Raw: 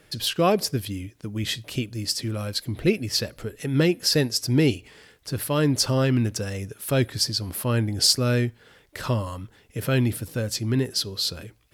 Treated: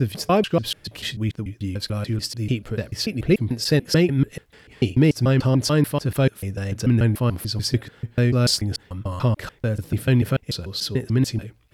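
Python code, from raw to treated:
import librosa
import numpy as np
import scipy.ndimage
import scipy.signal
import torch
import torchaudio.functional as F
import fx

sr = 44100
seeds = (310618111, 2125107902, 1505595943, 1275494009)

y = fx.block_reorder(x, sr, ms=146.0, group=6)
y = fx.bass_treble(y, sr, bass_db=4, treble_db=-6)
y = y * librosa.db_to_amplitude(1.5)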